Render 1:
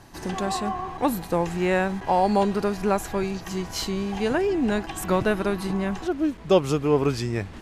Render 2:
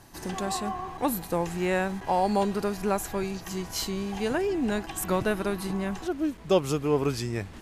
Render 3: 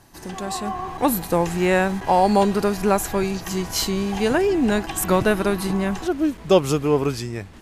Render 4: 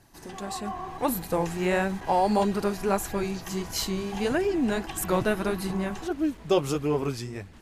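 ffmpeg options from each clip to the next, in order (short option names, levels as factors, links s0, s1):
-af "highshelf=f=8400:g=10.5,volume=0.631"
-af "dynaudnorm=f=130:g=11:m=2.51"
-af "flanger=delay=0.4:depth=7.6:regen=-45:speed=1.6:shape=sinusoidal,volume=0.75"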